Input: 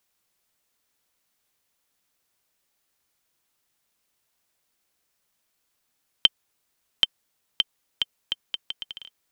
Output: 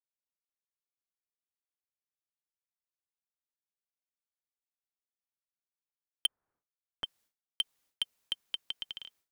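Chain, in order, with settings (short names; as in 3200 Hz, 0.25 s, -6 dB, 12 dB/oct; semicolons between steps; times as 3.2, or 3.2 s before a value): 6.26–7.04 LPF 1500 Hz 24 dB/oct; expander -57 dBFS; soft clip -17 dBFS, distortion -5 dB; gain -3 dB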